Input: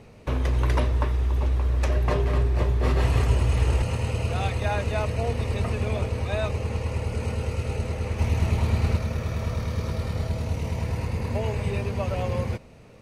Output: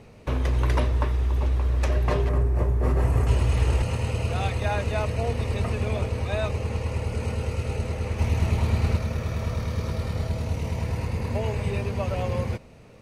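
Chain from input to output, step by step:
0:02.29–0:03.27: parametric band 3,700 Hz −14.5 dB 1.5 octaves

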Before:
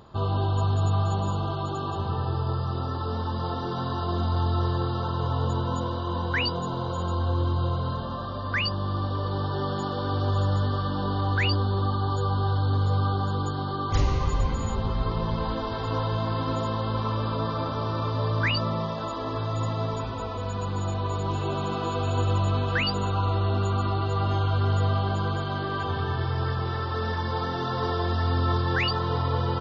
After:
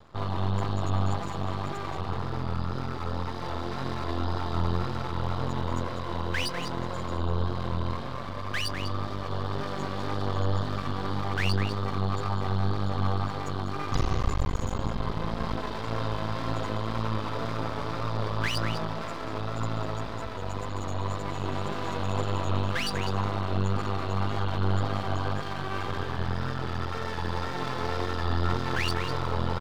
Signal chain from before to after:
pitch vibrato 1.9 Hz 44 cents
slap from a distant wall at 34 metres, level −7 dB
half-wave rectification

